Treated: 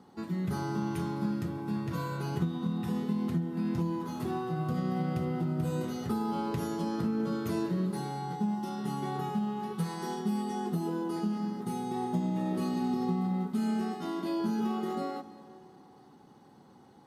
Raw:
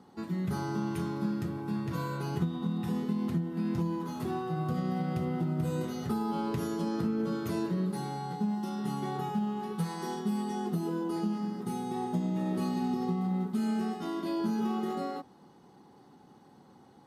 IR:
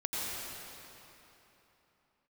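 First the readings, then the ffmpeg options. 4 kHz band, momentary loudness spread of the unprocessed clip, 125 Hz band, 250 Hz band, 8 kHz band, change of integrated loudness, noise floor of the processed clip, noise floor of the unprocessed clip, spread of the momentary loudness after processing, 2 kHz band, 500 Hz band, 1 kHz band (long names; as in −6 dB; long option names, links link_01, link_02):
0.0 dB, 4 LU, 0.0 dB, 0.0 dB, 0.0 dB, 0.0 dB, −56 dBFS, −57 dBFS, 4 LU, 0.0 dB, 0.0 dB, +0.5 dB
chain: -filter_complex "[0:a]asplit=2[link_01][link_02];[1:a]atrim=start_sample=2205,asetrate=61740,aresample=44100,adelay=137[link_03];[link_02][link_03]afir=irnorm=-1:irlink=0,volume=-19dB[link_04];[link_01][link_04]amix=inputs=2:normalize=0"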